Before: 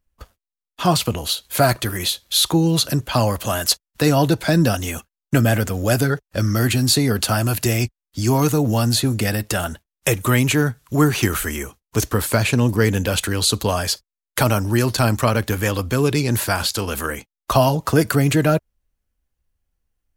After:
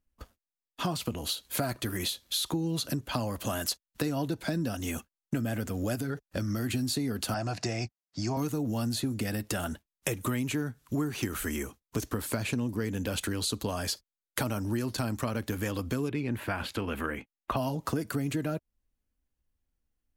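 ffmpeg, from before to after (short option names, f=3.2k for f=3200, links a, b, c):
-filter_complex "[0:a]asettb=1/sr,asplit=3[a][b][c];[a]atrim=end=5.954[d];[b]atrim=start=5.95:end=6.74,asetpts=PTS-STARTPTS,afade=t=in:d=0.004:c=qsin,afade=t=out:st=0.786:d=0.004:c=qsin,acompressor=threshold=-18dB:ratio=6:attack=3.2:release=140:knee=1:detection=peak[e];[c]atrim=start=6.736[f];[d][e]acrossfade=d=0.004:c1=hsin:c2=qsin[g];[g][f]acrossfade=d=0.004:c1=qsin:c2=hsin,asettb=1/sr,asplit=3[h][i][j];[h]atrim=end=7.344[k];[i]atrim=start=7.34:end=8.37,asetpts=PTS-STARTPTS,afade=t=in:d=0.004:c=qsin,afade=t=out:st=1.026:d=0.004:c=qsin,highpass=120,equalizer=f=250:t=q:w=4:g=-10,equalizer=f=390:t=q:w=4:g=-5,equalizer=f=720:t=q:w=4:g=9,equalizer=f=3.2k:t=q:w=4:g=-8,equalizer=f=5.1k:t=q:w=4:g=4,lowpass=f=6.5k:w=0.5412,lowpass=f=6.5k:w=1.3066[l];[j]atrim=start=8.366[m];[k][l]acrossfade=d=0.004:c1=hsin:c2=qsin[n];[n][m]acrossfade=d=0.004:c1=qsin:c2=hsin,asettb=1/sr,asplit=3[o][p][q];[o]atrim=end=16.094[r];[p]atrim=start=16.09:end=17.57,asetpts=PTS-STARTPTS,afade=t=in:d=0.004:c=qsin,afade=t=out:st=1.476:d=0.004:c=qsin,highshelf=f=3.7k:t=q:w=1.5:g=-12.5[s];[q]atrim=start=17.566[t];[r][s]acrossfade=d=0.004:c1=hsin:c2=qsin[u];[u][t]acrossfade=d=0.004:c1=qsin:c2=hsin,equalizer=f=260:t=o:w=0.87:g=7,acompressor=threshold=-21dB:ratio=6,volume=-7dB"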